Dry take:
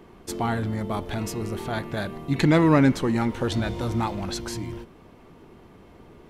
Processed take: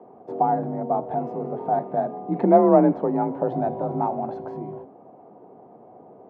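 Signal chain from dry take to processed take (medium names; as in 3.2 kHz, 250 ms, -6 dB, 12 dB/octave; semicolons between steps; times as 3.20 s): high-pass 120 Hz 12 dB/octave; frequency shift +37 Hz; resonant low-pass 730 Hz, resonance Q 4.9; de-hum 273 Hz, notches 37; trim -1.5 dB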